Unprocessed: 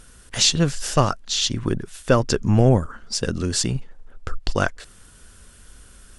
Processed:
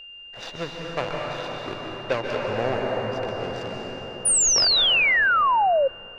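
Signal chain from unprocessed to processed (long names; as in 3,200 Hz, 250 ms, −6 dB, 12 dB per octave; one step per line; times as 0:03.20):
running median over 41 samples
three-way crossover with the lows and the highs turned down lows −20 dB, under 500 Hz, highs −23 dB, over 6,000 Hz
convolution reverb RT60 5.4 s, pre-delay 122 ms, DRR −2.5 dB
steady tone 2,800 Hz −40 dBFS
sound drawn into the spectrogram fall, 0:04.25–0:05.88, 520–9,800 Hz −19 dBFS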